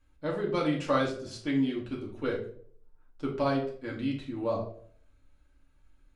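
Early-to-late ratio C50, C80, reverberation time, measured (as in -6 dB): 6.5 dB, 11.5 dB, 0.55 s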